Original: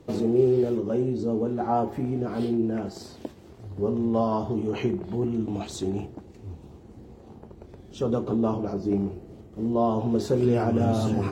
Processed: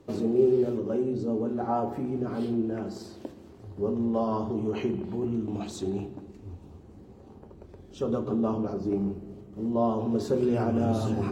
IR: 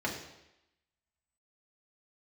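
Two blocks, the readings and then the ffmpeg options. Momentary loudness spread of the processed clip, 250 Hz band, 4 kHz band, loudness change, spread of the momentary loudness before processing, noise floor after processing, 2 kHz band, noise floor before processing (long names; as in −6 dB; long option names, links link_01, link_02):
18 LU, −2.0 dB, −4.5 dB, −2.5 dB, 19 LU, −50 dBFS, −3.5 dB, −49 dBFS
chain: -filter_complex "[0:a]asplit=2[link_01][link_02];[1:a]atrim=start_sample=2205,asetrate=26460,aresample=44100[link_03];[link_02][link_03]afir=irnorm=-1:irlink=0,volume=-16.5dB[link_04];[link_01][link_04]amix=inputs=2:normalize=0,volume=-5dB"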